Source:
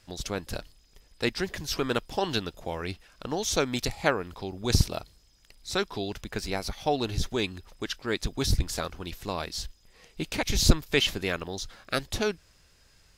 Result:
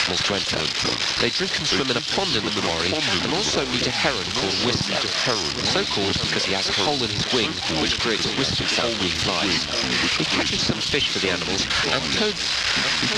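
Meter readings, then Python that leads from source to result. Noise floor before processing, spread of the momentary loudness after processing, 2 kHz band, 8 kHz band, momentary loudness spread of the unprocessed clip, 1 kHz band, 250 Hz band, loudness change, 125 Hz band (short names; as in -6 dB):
-61 dBFS, 2 LU, +11.5 dB, +8.0 dB, 13 LU, +8.0 dB, +7.0 dB, +9.5 dB, +2.0 dB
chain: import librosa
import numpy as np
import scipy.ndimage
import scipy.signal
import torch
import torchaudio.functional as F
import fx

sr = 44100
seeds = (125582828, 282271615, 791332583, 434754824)

y = x + 0.5 * 10.0 ** (-12.5 / 20.0) * np.diff(np.sign(x), prepend=np.sign(x[:1]))
y = scipy.signal.sosfilt(scipy.signal.butter(2, 120.0, 'highpass', fs=sr, output='sos'), y)
y = fx.rider(y, sr, range_db=10, speed_s=0.5)
y = fx.quant_companded(y, sr, bits=4)
y = fx.echo_pitch(y, sr, ms=176, semitones=-4, count=2, db_per_echo=-6.0)
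y = scipy.signal.sosfilt(scipy.signal.butter(4, 4800.0, 'lowpass', fs=sr, output='sos'), y)
y = y + 10.0 ** (-14.5 / 20.0) * np.pad(y, (int(897 * sr / 1000.0), 0))[:len(y)]
y = fx.band_squash(y, sr, depth_pct=100)
y = y * librosa.db_to_amplitude(3.5)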